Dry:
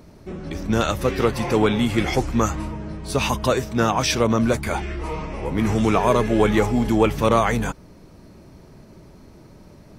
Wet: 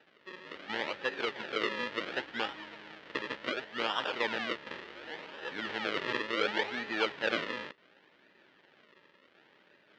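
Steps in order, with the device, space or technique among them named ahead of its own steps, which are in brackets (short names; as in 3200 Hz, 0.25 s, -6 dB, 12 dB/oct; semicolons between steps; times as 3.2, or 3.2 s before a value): circuit-bent sampling toy (decimation with a swept rate 40×, swing 100% 0.69 Hz; speaker cabinet 560–4100 Hz, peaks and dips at 700 Hz -7 dB, 1100 Hz -5 dB, 1800 Hz +6 dB, 3000 Hz +4 dB); gain -8.5 dB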